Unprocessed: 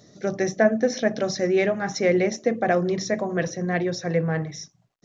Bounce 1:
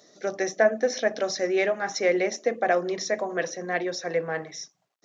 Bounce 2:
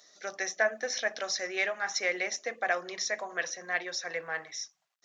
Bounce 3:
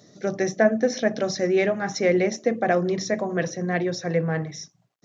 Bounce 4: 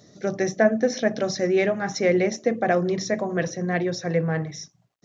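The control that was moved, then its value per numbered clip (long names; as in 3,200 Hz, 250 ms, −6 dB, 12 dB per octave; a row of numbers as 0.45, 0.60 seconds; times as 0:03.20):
high-pass filter, corner frequency: 410, 1,100, 110, 42 Hertz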